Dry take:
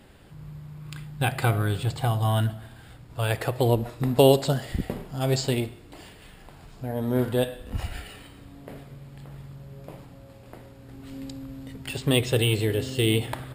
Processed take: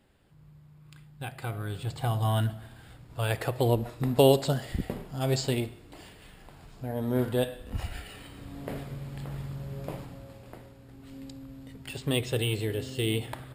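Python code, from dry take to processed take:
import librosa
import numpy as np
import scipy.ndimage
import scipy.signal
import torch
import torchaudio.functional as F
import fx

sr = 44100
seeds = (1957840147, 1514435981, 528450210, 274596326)

y = fx.gain(x, sr, db=fx.line((1.4, -13.0), (2.16, -3.0), (8.05, -3.0), (8.61, 5.0), (9.91, 5.0), (10.93, -6.0)))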